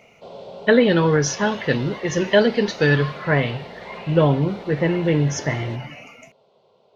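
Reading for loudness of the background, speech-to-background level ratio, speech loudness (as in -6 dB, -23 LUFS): -39.0 LUFS, 19.0 dB, -20.0 LUFS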